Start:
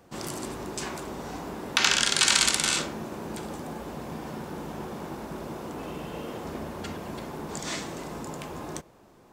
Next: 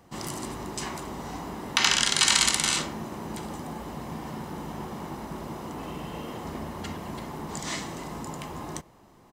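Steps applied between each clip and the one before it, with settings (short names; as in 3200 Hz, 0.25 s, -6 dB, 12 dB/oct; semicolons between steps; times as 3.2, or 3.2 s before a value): comb 1 ms, depth 32%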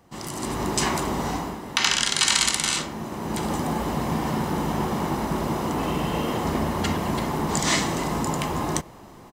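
AGC gain up to 12 dB; gain -1 dB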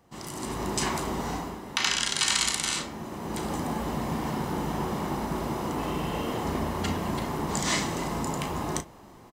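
doubler 35 ms -10 dB; gain -5 dB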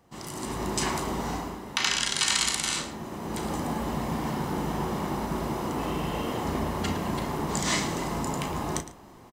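echo 0.111 s -14.5 dB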